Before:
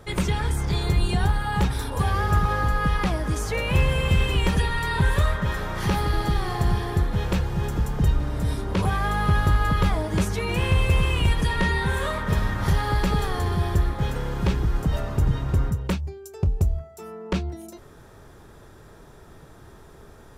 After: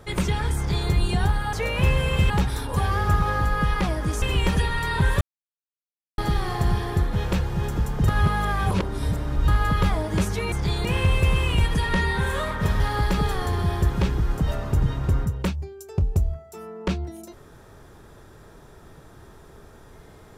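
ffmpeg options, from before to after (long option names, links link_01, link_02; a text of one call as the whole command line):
ffmpeg -i in.wav -filter_complex "[0:a]asplit=12[link_01][link_02][link_03][link_04][link_05][link_06][link_07][link_08][link_09][link_10][link_11][link_12];[link_01]atrim=end=1.532[link_13];[link_02]atrim=start=3.448:end=4.222[link_14];[link_03]atrim=start=1.528:end=3.452[link_15];[link_04]atrim=start=4.218:end=5.21,asetpts=PTS-STARTPTS,afade=type=out:start_time=0.988:duration=0.004:curve=hsin[link_16];[link_05]atrim=start=5.21:end=6.18,asetpts=PTS-STARTPTS,volume=0[link_17];[link_06]atrim=start=6.18:end=8.082,asetpts=PTS-STARTPTS,afade=type=in:duration=0.004:curve=hsin[link_18];[link_07]atrim=start=8.078:end=9.482,asetpts=PTS-STARTPTS,areverse[link_19];[link_08]atrim=start=9.478:end=10.522[link_20];[link_09]atrim=start=0.568:end=0.902[link_21];[link_10]atrim=start=10.518:end=12.472[link_22];[link_11]atrim=start=12.728:end=13.832[link_23];[link_12]atrim=start=14.348[link_24];[link_13][link_14]acrossfade=duration=0.004:curve1=hsin:curve2=hsin[link_25];[link_25][link_15]acrossfade=duration=0.004:curve1=hsin:curve2=hsin[link_26];[link_16][link_17][link_18]concat=n=3:v=0:a=1[link_27];[link_26][link_27]acrossfade=duration=0.004:curve1=hsin:curve2=hsin[link_28];[link_28][link_19]acrossfade=duration=0.004:curve1=hsin:curve2=hsin[link_29];[link_29][link_20]acrossfade=duration=0.004:curve1=hsin:curve2=hsin[link_30];[link_30][link_21]acrossfade=duration=0.004:curve1=hsin:curve2=hsin[link_31];[link_31][link_22]acrossfade=duration=0.004:curve1=hsin:curve2=hsin[link_32];[link_32][link_23]acrossfade=duration=0.004:curve1=hsin:curve2=hsin[link_33];[link_33][link_24]acrossfade=duration=0.004:curve1=hsin:curve2=hsin" out.wav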